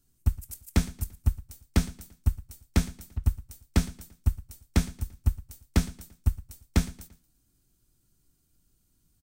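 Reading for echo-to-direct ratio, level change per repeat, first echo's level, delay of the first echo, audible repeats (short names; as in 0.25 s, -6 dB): -18.5 dB, -7.0 dB, -19.5 dB, 0.114 s, 3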